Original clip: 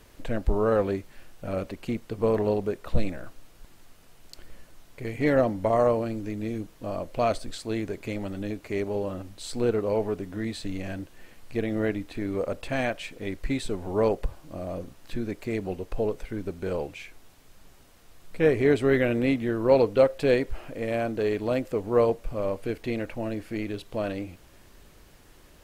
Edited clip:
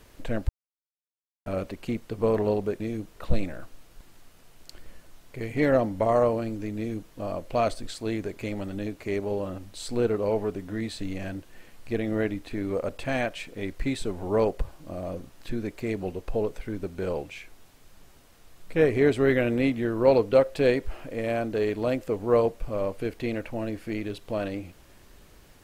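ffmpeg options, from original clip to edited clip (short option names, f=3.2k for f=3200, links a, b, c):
-filter_complex "[0:a]asplit=5[a][b][c][d][e];[a]atrim=end=0.49,asetpts=PTS-STARTPTS,afade=t=out:st=0.486:d=0.004:c=hsin[f];[b]atrim=start=0.49:end=1.46,asetpts=PTS-STARTPTS,volume=0[g];[c]atrim=start=1.46:end=2.802,asetpts=PTS-STARTPTS,afade=t=in:d=0.004:c=hsin[h];[d]atrim=start=6.408:end=6.772[i];[e]atrim=start=2.798[j];[f][g][h]concat=n=3:v=0:a=1[k];[k][i]acrossfade=d=0.004:c1=hsin:c2=hsin[l];[l][j]acrossfade=d=0.004:c1=hsin:c2=hsin"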